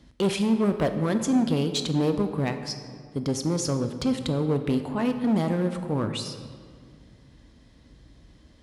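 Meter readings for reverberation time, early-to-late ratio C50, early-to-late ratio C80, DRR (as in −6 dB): 2.0 s, 9.0 dB, 10.0 dB, 7.5 dB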